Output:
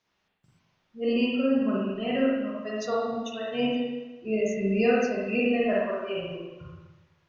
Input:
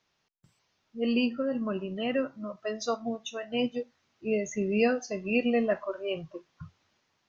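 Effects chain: spring tank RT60 1.1 s, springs 41/56 ms, chirp 55 ms, DRR -5.5 dB; gain -3.5 dB

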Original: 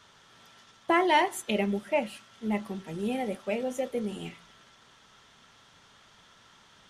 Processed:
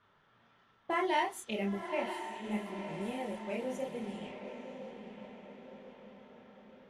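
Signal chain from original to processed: chorus voices 2, 0.67 Hz, delay 30 ms, depth 4.7 ms; diffused feedback echo 0.97 s, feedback 52%, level -8 dB; low-pass opened by the level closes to 1900 Hz, open at -28 dBFS; gain -5 dB

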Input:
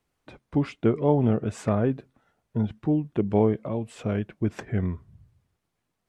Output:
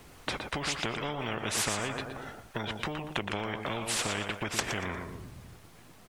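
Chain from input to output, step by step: compressor, threshold -28 dBFS, peak gain reduction 12.5 dB; on a send: feedback echo 0.118 s, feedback 28%, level -13 dB; on the sum: spectral compressor 4:1; gain +6.5 dB

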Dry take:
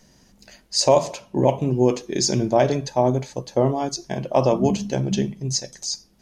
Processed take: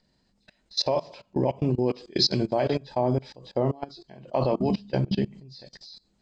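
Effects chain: nonlinear frequency compression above 2900 Hz 1.5:1; level quantiser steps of 23 dB; 1.98–2.8 tone controls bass -2 dB, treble +6 dB

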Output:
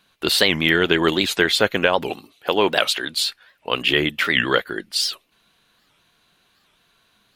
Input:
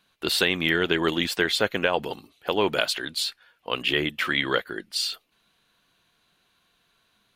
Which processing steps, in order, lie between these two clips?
2.09–3.13 low shelf 110 Hz -10.5 dB; record warp 78 rpm, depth 250 cents; gain +5.5 dB

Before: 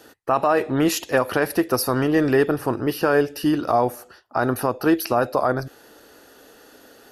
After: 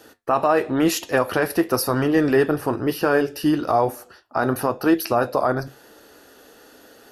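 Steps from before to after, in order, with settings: flange 1 Hz, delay 8.7 ms, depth 4.4 ms, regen -69%; gain +4.5 dB

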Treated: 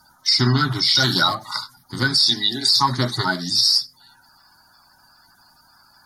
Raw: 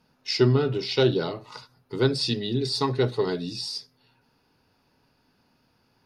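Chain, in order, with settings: bin magnitudes rounded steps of 30 dB; 0.95–1.35 high shelf 2500 Hz +12 dB; 2.06–2.73 HPF 140 Hz -> 350 Hz 12 dB/oct; tilt shelf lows -8.5 dB; fixed phaser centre 1100 Hz, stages 4; maximiser +20 dB; gain -5.5 dB

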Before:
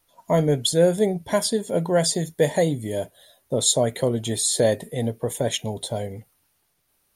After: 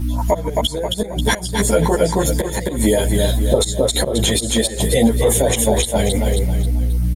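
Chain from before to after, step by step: low shelf 320 Hz -11.5 dB; in parallel at +3 dB: compressor 10:1, threshold -33 dBFS, peak gain reduction 18 dB; on the sum: hum 60 Hz, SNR 12 dB; flipped gate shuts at -12 dBFS, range -26 dB; LFO notch saw up 4.7 Hz 460–4300 Hz; on a send: feedback echo 0.268 s, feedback 38%, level -7.5 dB; on the sum: maximiser +22.5 dB; ensemble effect; gain -2 dB

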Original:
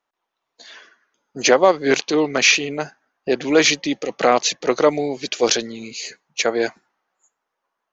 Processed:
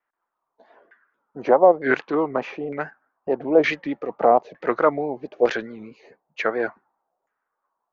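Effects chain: LFO low-pass saw down 1.1 Hz 620–1900 Hz; vibrato 4.6 Hz 80 cents; gain -5 dB

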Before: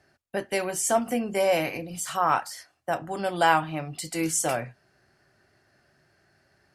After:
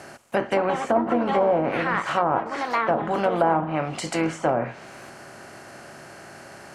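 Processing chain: per-bin compression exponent 0.6; echoes that change speed 0.323 s, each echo +6 st, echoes 3, each echo -6 dB; treble ducked by the level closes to 760 Hz, closed at -17 dBFS; gain +2 dB

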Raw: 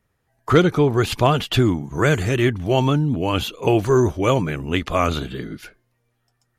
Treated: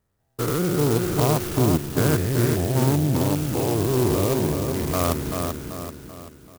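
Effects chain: stepped spectrum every 0.2 s; air absorption 160 m; feedback echo 0.386 s, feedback 45%, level -5 dB; clock jitter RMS 0.098 ms; gain -1 dB

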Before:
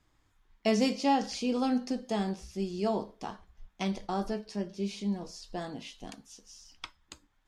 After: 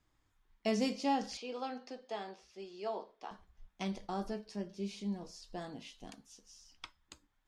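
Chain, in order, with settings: 1.37–3.31 three-band isolator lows -23 dB, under 370 Hz, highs -16 dB, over 5100 Hz; gain -6 dB

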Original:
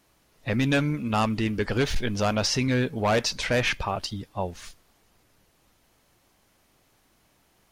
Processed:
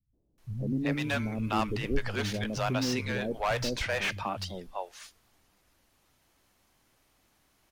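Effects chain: three bands offset in time lows, mids, highs 0.13/0.38 s, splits 150/490 Hz; slew limiter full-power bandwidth 170 Hz; gain -3.5 dB

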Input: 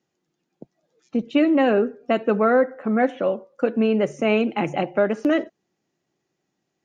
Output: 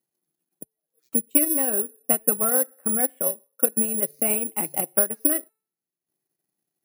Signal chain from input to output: de-hum 439 Hz, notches 40; transient shaper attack +7 dB, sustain -10 dB; careless resampling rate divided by 4×, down none, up zero stuff; gain -11.5 dB

